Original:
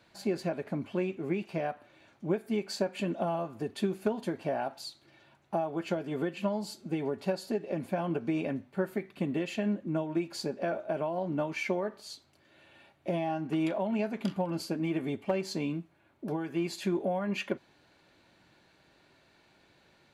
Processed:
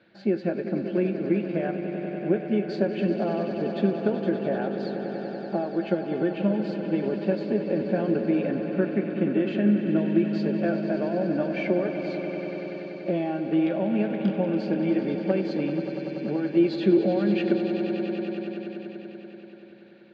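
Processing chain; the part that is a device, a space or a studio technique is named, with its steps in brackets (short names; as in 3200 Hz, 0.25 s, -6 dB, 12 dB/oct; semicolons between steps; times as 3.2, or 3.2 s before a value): guitar cabinet (speaker cabinet 100–3900 Hz, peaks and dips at 200 Hz +9 dB, 340 Hz +8 dB, 510 Hz +7 dB, 1000 Hz -8 dB, 1600 Hz +6 dB); 16.57–17.05 graphic EQ 500/1000/4000 Hz +8/-4/+7 dB; swelling echo 96 ms, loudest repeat 5, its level -11.5 dB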